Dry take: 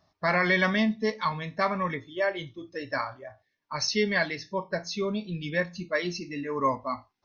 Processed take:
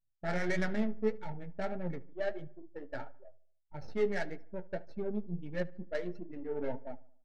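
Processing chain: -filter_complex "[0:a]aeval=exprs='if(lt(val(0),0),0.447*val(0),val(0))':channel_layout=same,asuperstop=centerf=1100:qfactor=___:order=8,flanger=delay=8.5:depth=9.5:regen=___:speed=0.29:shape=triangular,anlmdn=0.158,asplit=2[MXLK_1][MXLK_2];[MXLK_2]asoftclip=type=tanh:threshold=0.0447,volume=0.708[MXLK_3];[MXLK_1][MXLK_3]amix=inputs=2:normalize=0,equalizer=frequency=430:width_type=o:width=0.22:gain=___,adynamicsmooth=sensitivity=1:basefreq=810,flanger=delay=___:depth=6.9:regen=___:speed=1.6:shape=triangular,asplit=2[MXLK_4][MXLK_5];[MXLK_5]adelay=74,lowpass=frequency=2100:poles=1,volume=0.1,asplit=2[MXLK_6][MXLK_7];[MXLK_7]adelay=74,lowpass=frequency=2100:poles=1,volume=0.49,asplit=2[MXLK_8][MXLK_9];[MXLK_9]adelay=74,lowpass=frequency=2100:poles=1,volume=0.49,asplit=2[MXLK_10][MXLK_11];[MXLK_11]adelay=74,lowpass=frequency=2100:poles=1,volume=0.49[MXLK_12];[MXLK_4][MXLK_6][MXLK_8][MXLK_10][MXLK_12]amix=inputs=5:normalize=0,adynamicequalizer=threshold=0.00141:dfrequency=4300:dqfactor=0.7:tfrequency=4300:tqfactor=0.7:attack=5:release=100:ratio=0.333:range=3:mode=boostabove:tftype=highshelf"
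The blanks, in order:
2.7, 89, 3.5, 5.4, 46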